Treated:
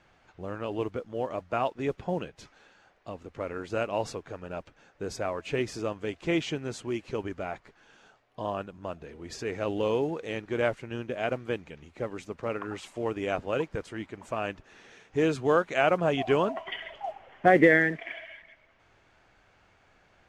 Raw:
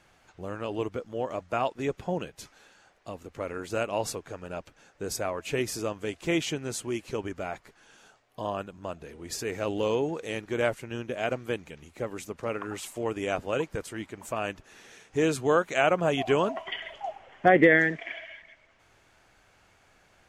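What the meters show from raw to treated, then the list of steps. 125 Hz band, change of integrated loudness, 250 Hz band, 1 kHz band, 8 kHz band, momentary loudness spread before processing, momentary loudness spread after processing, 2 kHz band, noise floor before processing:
0.0 dB, -0.5 dB, 0.0 dB, -0.5 dB, -9.0 dB, 16 LU, 16 LU, -1.0 dB, -63 dBFS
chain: treble shelf 6.7 kHz -7 dB; modulation noise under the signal 31 dB; distance through air 66 m

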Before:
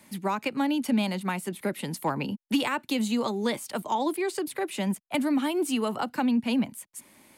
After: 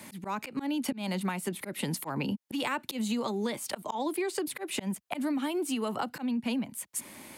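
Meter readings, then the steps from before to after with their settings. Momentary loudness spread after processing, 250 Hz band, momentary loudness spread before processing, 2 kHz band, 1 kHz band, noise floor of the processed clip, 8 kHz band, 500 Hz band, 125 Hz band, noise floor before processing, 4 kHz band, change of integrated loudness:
5 LU, -5.0 dB, 7 LU, -4.0 dB, -5.5 dB, -59 dBFS, +0.5 dB, -4.5 dB, -2.5 dB, -61 dBFS, -3.5 dB, -5.0 dB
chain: high-pass 42 Hz 24 dB/octave; slow attack 294 ms; compression 10:1, threshold -37 dBFS, peak gain reduction 16 dB; trim +8.5 dB

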